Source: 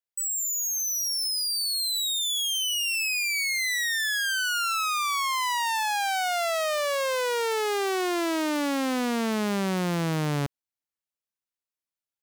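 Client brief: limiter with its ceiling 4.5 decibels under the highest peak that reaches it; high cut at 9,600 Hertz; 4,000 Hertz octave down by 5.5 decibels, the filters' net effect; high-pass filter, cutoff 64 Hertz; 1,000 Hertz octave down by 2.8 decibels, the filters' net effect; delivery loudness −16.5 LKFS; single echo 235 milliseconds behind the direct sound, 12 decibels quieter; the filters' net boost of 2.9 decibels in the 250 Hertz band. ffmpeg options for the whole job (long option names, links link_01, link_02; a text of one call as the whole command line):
ffmpeg -i in.wav -af "highpass=64,lowpass=9600,equalizer=frequency=250:width_type=o:gain=4,equalizer=frequency=1000:width_type=o:gain=-3.5,equalizer=frequency=4000:width_type=o:gain=-7,alimiter=limit=-22.5dB:level=0:latency=1,aecho=1:1:235:0.251,volume=11.5dB" out.wav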